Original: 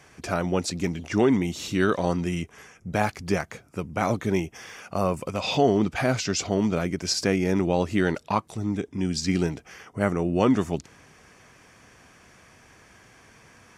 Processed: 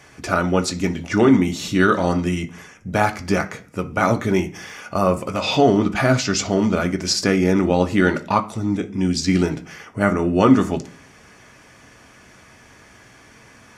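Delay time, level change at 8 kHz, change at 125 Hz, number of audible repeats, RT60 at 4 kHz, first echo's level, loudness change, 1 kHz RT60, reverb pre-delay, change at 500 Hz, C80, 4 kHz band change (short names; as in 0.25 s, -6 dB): none, +5.0 dB, +5.5 dB, none, 0.50 s, none, +6.0 dB, 0.40 s, 3 ms, +5.5 dB, 20.5 dB, +5.5 dB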